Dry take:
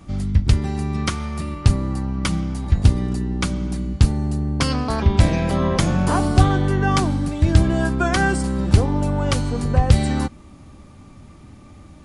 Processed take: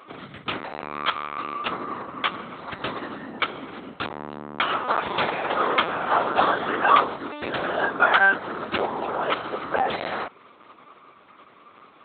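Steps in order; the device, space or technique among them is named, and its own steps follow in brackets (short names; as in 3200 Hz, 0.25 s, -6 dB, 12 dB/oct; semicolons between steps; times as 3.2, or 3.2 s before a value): talking toy (LPC vocoder at 8 kHz; HPF 580 Hz 12 dB/oct; bell 1300 Hz +6 dB 0.53 oct); gain +2.5 dB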